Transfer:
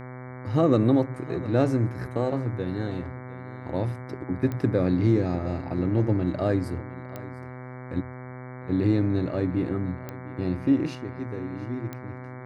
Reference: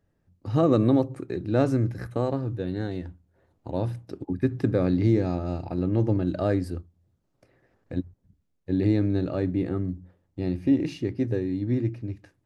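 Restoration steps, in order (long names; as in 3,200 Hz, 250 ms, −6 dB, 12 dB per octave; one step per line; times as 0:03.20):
click removal
hum removal 126.7 Hz, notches 18
echo removal 705 ms −18 dB
level 0 dB, from 0:10.95 +7.5 dB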